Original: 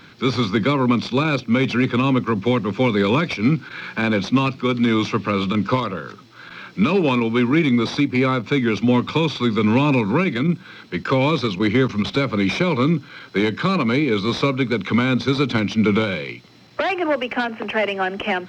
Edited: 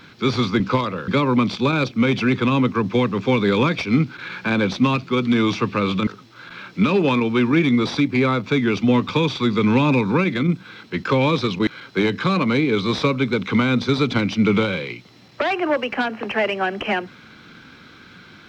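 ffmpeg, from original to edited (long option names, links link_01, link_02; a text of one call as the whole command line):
ffmpeg -i in.wav -filter_complex "[0:a]asplit=5[link_01][link_02][link_03][link_04][link_05];[link_01]atrim=end=0.602[link_06];[link_02]atrim=start=5.588:end=6.072[link_07];[link_03]atrim=start=0.598:end=5.592[link_08];[link_04]atrim=start=6.068:end=11.672[link_09];[link_05]atrim=start=13.058[link_10];[link_06][link_07]acrossfade=duration=0.004:curve1=hsin:curve2=hsin[link_11];[link_11][link_08]acrossfade=duration=0.004:curve1=hsin:curve2=hsin[link_12];[link_12][link_09]acrossfade=duration=0.004:curve1=hsin:curve2=hsin[link_13];[link_13][link_10]acrossfade=duration=0.004:curve1=hsin:curve2=hsin" out.wav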